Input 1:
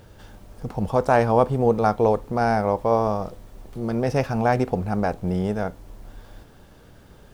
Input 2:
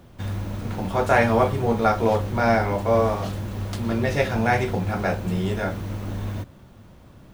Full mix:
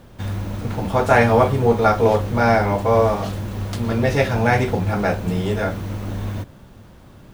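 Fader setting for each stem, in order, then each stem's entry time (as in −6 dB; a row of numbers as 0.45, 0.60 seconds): −3.5, +3.0 decibels; 0.00, 0.00 seconds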